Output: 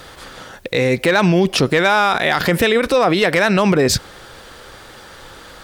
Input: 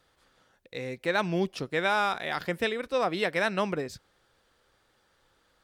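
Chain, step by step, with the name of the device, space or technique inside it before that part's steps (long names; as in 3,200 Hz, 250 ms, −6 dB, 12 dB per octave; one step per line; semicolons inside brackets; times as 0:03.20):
loud club master (downward compressor 2 to 1, threshold −32 dBFS, peak gain reduction 6 dB; hard clipping −23.5 dBFS, distortion −25 dB; boost into a limiter +34.5 dB)
level −5.5 dB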